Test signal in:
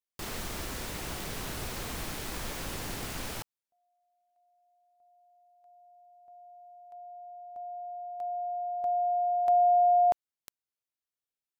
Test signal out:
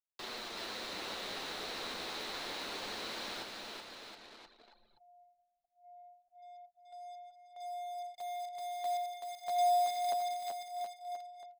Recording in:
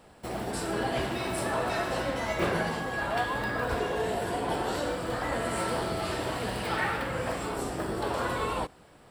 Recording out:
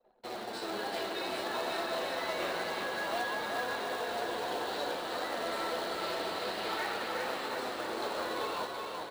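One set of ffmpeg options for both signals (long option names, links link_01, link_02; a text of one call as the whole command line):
ffmpeg -i in.wav -filter_complex "[0:a]acrossover=split=250|590[link_01][link_02][link_03];[link_01]acompressor=threshold=-51dB:ratio=2[link_04];[link_02]acompressor=threshold=-37dB:ratio=6[link_05];[link_03]acompressor=threshold=-38dB:ratio=1.5[link_06];[link_04][link_05][link_06]amix=inputs=3:normalize=0,acrossover=split=280 5600:gain=0.178 1 0.178[link_07][link_08][link_09];[link_07][link_08][link_09]amix=inputs=3:normalize=0,flanger=delay=7.9:depth=4.1:regen=-16:speed=0.27:shape=sinusoidal,acrusher=bits=3:mode=log:mix=0:aa=0.000001,equalizer=frequency=200:width_type=o:width=0.33:gain=5,equalizer=frequency=4000:width_type=o:width=0.33:gain=10,equalizer=frequency=16000:width_type=o:width=0.33:gain=-8,asplit=2[link_10][link_11];[link_11]aecho=0:1:380|722|1030|1307|1556:0.631|0.398|0.251|0.158|0.1[link_12];[link_10][link_12]amix=inputs=2:normalize=0,anlmdn=0.000631,areverse,acompressor=mode=upward:threshold=-47dB:ratio=2.5:attack=0.14:release=974:knee=2.83:detection=peak,areverse" out.wav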